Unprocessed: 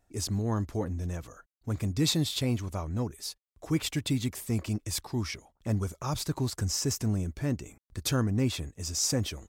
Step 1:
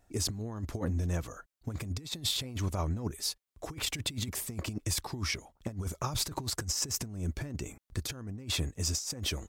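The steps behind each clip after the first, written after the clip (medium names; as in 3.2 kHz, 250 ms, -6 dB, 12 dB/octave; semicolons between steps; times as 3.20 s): compressor with a negative ratio -33 dBFS, ratio -0.5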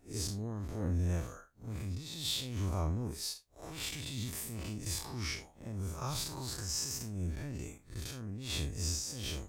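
spectral blur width 114 ms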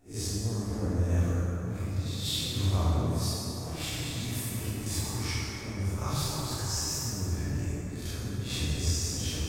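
plate-style reverb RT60 3.7 s, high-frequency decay 0.5×, DRR -5.5 dB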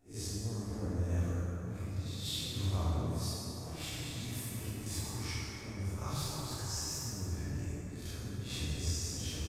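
resampled via 32 kHz; trim -6.5 dB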